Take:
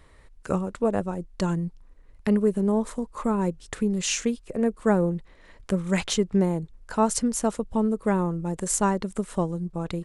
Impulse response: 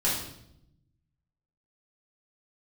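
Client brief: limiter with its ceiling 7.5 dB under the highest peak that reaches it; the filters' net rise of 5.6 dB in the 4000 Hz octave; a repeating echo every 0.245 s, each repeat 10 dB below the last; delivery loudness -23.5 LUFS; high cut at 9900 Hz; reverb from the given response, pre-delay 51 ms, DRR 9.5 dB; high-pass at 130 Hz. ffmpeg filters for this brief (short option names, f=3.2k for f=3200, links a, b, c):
-filter_complex "[0:a]highpass=130,lowpass=9.9k,equalizer=f=4k:t=o:g=7.5,alimiter=limit=-15.5dB:level=0:latency=1,aecho=1:1:245|490|735|980:0.316|0.101|0.0324|0.0104,asplit=2[a][b];[1:a]atrim=start_sample=2205,adelay=51[c];[b][c]afir=irnorm=-1:irlink=0,volume=-19.5dB[d];[a][d]amix=inputs=2:normalize=0,volume=3dB"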